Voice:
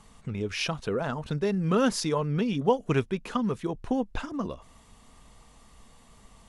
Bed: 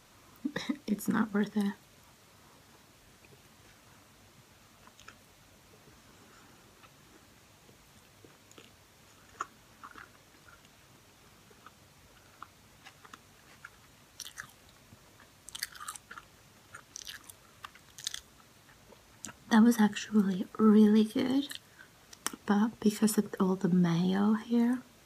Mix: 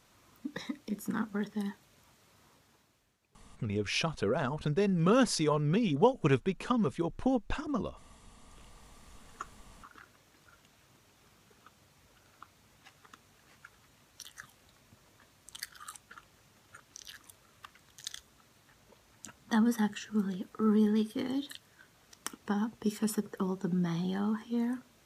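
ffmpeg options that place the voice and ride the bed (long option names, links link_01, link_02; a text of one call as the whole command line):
ffmpeg -i stem1.wav -i stem2.wav -filter_complex "[0:a]adelay=3350,volume=-1.5dB[link_01];[1:a]volume=9dB,afade=type=out:start_time=2.42:duration=0.76:silence=0.211349,afade=type=in:start_time=8.43:duration=0.42:silence=0.211349[link_02];[link_01][link_02]amix=inputs=2:normalize=0" out.wav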